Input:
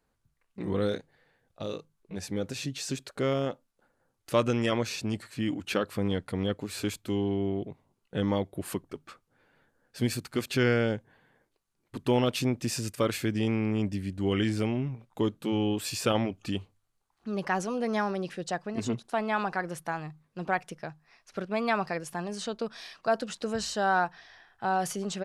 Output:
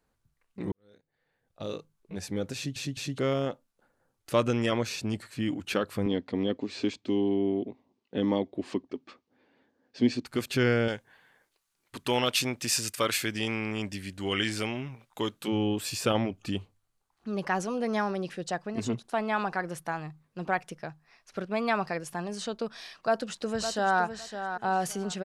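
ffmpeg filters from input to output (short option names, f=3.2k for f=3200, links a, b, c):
-filter_complex "[0:a]asettb=1/sr,asplit=3[a][b][c];[a]atrim=end=6.064[d];[b]atrim=start=6.06:end=10.26,asetpts=PTS-STARTPTS,afade=t=in:d=0.004:c=qsin,afade=t=out:st=4.196:d=0.004:c=qsin,highpass=100,equalizer=f=100:t=q:w=4:g=-6,equalizer=f=150:t=q:w=4:g=-10,equalizer=f=260:t=q:w=4:g=9,equalizer=f=370:t=q:w=4:g=3,equalizer=f=1.4k:t=q:w=4:g=-9,lowpass=f=5.7k:w=0.5412,lowpass=f=5.7k:w=1.3066[e];[c]atrim=start=10.256[f];[d][e]acrossfade=d=0.004:c1=hsin:c2=qsin[g];[g][f]acrossfade=d=0.004:c1=qsin:c2=hsin,asettb=1/sr,asplit=3[h][i][j];[h]atrim=end=10.884[k];[i]atrim=start=10.88:end=15.48,asetpts=PTS-STARTPTS,afade=t=in:d=0.004:c=qsin,afade=t=out:st=4.596:d=0.004:c=qsin,tiltshelf=f=690:g=-7.5[l];[j]atrim=start=15.476[m];[k][l]acrossfade=d=0.004:c1=hsin:c2=qsin[n];[n][m]acrossfade=d=0.004:c1=qsin:c2=hsin,asplit=2[o][p];[p]afade=t=in:st=22.92:d=0.01,afade=t=out:st=24.01:d=0.01,aecho=0:1:560|1120|1680:0.354813|0.0709627|0.0141925[q];[o][q]amix=inputs=2:normalize=0,asplit=5[r][s][t][u][v];[r]atrim=end=0.72,asetpts=PTS-STARTPTS,afade=t=out:st=0.716:d=0.004:c=hsin[w];[s]atrim=start=0.72:end=2.762,asetpts=PTS-STARTPTS,afade=t=in:d=0.98:c=qua[x];[t]atrim=start=2.548:end=2.762[y];[u]atrim=start=2.548:end=2.762[z];[v]atrim=start=3.178[aa];[w][x]concat=n=2:v=0:a=1[ab];[ab][y]acrossfade=d=0.004:c1=hsin:c2=hsin[ac];[ac][z]acrossfade=d=0.004:c1=hsin:c2=hsin[ad];[ad][aa]acrossfade=d=0.004:c1=hsin:c2=hsin"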